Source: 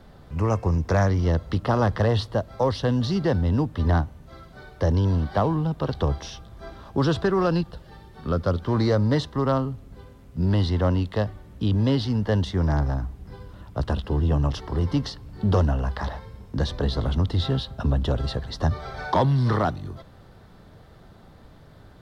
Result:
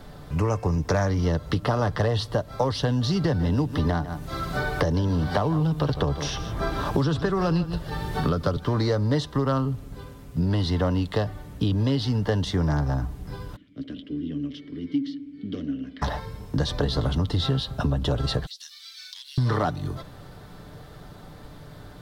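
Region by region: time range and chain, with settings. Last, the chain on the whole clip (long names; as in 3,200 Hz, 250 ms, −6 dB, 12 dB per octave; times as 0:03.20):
0:03.24–0:08.57: single-tap delay 151 ms −16 dB + multiband upward and downward compressor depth 70%
0:13.56–0:16.02: formant filter i + delay with a band-pass on its return 62 ms, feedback 70%, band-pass 430 Hz, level −10.5 dB
0:18.46–0:19.38: inverse Chebyshev high-pass filter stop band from 510 Hz, stop band 80 dB + log-companded quantiser 8 bits + downward compressor 12 to 1, threshold −44 dBFS
whole clip: high-shelf EQ 5,400 Hz +6.5 dB; comb filter 6.8 ms, depth 34%; downward compressor 4 to 1, threshold −26 dBFS; level +5 dB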